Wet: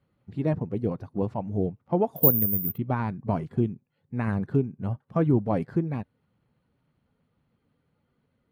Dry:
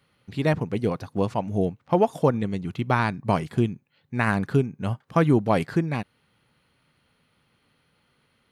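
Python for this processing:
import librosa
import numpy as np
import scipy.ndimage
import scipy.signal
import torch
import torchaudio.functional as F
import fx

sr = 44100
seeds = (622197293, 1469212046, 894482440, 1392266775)

y = fx.spec_quant(x, sr, step_db=15)
y = fx.tilt_shelf(y, sr, db=9.0, hz=1400.0)
y = fx.resample_bad(y, sr, factor=3, down='filtered', up='zero_stuff', at=(2.16, 2.78))
y = y * librosa.db_to_amplitude(-10.5)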